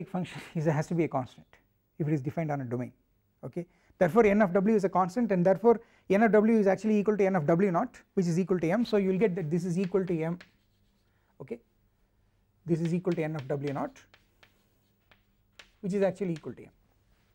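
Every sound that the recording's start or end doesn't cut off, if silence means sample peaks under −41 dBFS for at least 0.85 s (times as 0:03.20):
0:11.40–0:11.56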